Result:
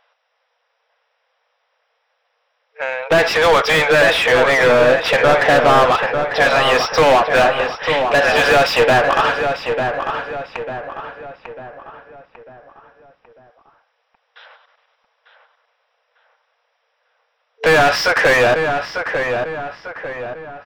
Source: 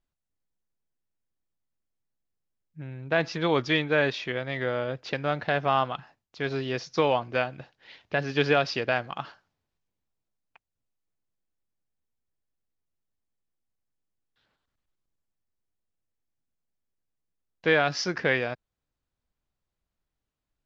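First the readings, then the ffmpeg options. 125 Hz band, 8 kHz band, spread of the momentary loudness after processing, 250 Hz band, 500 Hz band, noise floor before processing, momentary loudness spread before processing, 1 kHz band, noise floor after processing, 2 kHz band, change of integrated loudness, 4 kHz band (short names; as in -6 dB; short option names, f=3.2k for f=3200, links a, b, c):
+6.5 dB, n/a, 15 LU, +7.5 dB, +14.5 dB, under -85 dBFS, 12 LU, +15.5 dB, -68 dBFS, +15.0 dB, +12.5 dB, +14.0 dB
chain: -filter_complex "[0:a]bandreject=f=4.4k:w=5.1,afftfilt=real='re*between(b*sr/4096,450,5800)':imag='im*between(b*sr/4096,450,5800)':win_size=4096:overlap=0.75,acontrast=68,asplit=2[a][b];[b]highpass=f=720:p=1,volume=35dB,asoftclip=type=tanh:threshold=-4dB[c];[a][c]amix=inputs=2:normalize=0,lowpass=f=1.6k:p=1,volume=-6dB,asplit=2[d][e];[e]adelay=897,lowpass=f=2.5k:p=1,volume=-6dB,asplit=2[f][g];[g]adelay=897,lowpass=f=2.5k:p=1,volume=0.45,asplit=2[h][i];[i]adelay=897,lowpass=f=2.5k:p=1,volume=0.45,asplit=2[j][k];[k]adelay=897,lowpass=f=2.5k:p=1,volume=0.45,asplit=2[l][m];[m]adelay=897,lowpass=f=2.5k:p=1,volume=0.45[n];[d][f][h][j][l][n]amix=inputs=6:normalize=0"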